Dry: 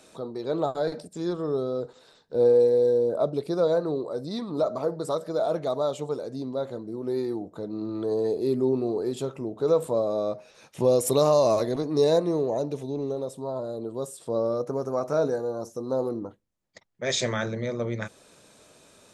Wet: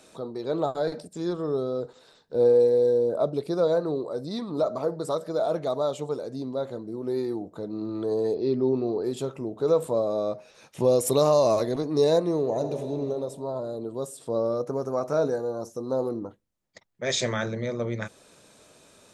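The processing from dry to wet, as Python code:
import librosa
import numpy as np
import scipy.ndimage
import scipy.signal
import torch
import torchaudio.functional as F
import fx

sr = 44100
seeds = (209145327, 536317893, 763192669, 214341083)

y = fx.brickwall_lowpass(x, sr, high_hz=6100.0, at=(8.34, 9.04))
y = fx.reverb_throw(y, sr, start_s=12.39, length_s=0.55, rt60_s=2.6, drr_db=6.0)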